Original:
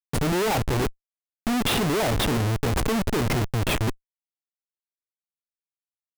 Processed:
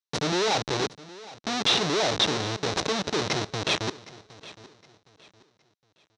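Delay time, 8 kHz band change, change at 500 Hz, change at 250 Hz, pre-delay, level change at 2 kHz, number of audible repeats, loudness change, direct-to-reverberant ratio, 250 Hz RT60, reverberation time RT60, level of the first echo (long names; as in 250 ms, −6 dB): 764 ms, 0.0 dB, −1.5 dB, −6.0 dB, no reverb audible, −0.5 dB, 2, −1.0 dB, no reverb audible, no reverb audible, no reverb audible, −19.0 dB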